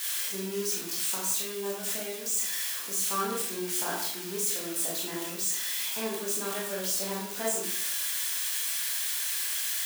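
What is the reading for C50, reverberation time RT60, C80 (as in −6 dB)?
2.5 dB, 0.65 s, 5.5 dB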